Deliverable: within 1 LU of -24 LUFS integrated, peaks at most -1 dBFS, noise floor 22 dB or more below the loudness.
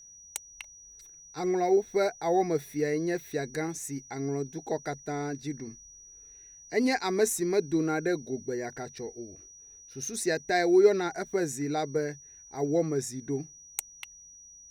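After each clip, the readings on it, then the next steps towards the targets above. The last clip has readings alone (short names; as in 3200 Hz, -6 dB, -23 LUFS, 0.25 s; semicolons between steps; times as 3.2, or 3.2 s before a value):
steady tone 5800 Hz; tone level -49 dBFS; loudness -29.5 LUFS; peak -10.0 dBFS; loudness target -24.0 LUFS
-> notch 5800 Hz, Q 30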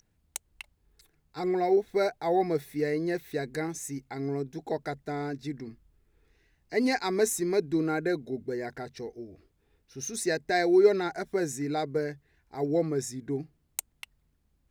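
steady tone none; loudness -29.5 LUFS; peak -9.5 dBFS; loudness target -24.0 LUFS
-> gain +5.5 dB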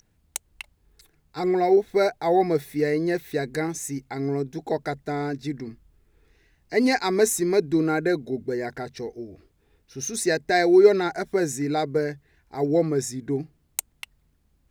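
loudness -24.0 LUFS; peak -4.0 dBFS; noise floor -66 dBFS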